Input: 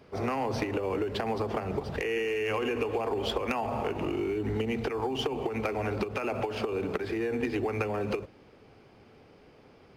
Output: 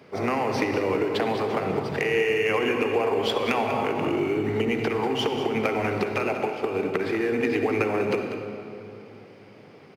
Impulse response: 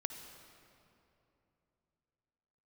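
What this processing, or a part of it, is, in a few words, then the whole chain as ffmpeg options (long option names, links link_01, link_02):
PA in a hall: -filter_complex "[0:a]asplit=3[link_01][link_02][link_03];[link_01]afade=type=out:start_time=6.23:duration=0.02[link_04];[link_02]agate=range=-12dB:threshold=-31dB:ratio=16:detection=peak,afade=type=in:start_time=6.23:duration=0.02,afade=type=out:start_time=6.93:duration=0.02[link_05];[link_03]afade=type=in:start_time=6.93:duration=0.02[link_06];[link_04][link_05][link_06]amix=inputs=3:normalize=0,highpass=frequency=110:width=0.5412,highpass=frequency=110:width=1.3066,equalizer=frequency=2100:width_type=o:width=0.38:gain=4.5,aecho=1:1:193:0.282[link_07];[1:a]atrim=start_sample=2205[link_08];[link_07][link_08]afir=irnorm=-1:irlink=0,volume=6dB"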